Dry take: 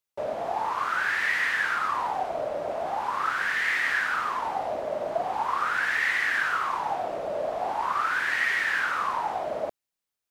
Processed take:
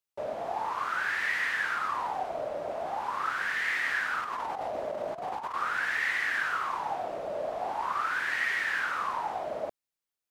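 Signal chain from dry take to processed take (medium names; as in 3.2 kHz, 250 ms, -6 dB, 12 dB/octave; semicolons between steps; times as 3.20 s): 4.21–5.54 s: compressor with a negative ratio -30 dBFS, ratio -0.5; trim -4 dB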